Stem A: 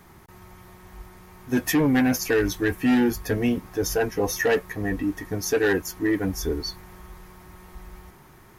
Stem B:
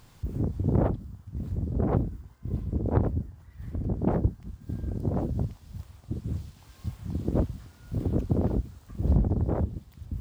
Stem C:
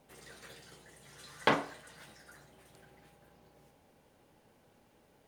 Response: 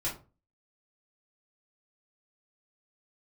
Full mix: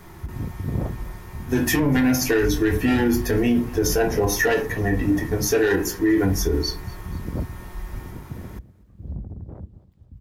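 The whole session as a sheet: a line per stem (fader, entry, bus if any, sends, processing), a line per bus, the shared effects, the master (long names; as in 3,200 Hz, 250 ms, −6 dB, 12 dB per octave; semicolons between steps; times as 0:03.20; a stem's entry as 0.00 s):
+1.0 dB, 0.00 s, send −3.5 dB, echo send −20.5 dB, no processing
0:07.43 −6.5 dB → 0:08.12 −15.5 dB, 0.00 s, no send, echo send −18 dB, bass and treble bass +6 dB, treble −4 dB
muted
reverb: on, RT60 0.35 s, pre-delay 3 ms
echo: repeating echo 244 ms, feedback 43%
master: brickwall limiter −11.5 dBFS, peak gain reduction 8 dB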